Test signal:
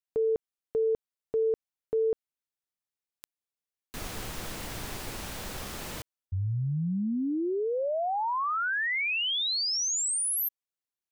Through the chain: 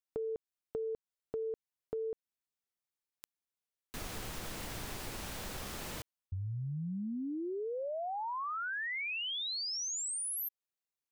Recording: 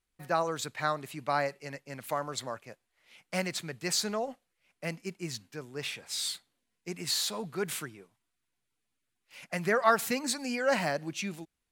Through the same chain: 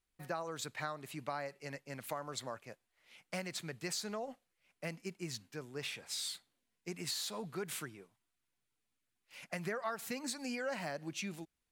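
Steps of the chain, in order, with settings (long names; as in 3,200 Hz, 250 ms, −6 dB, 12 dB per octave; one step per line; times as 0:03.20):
downward compressor 4 to 1, threshold −34 dBFS
level −3 dB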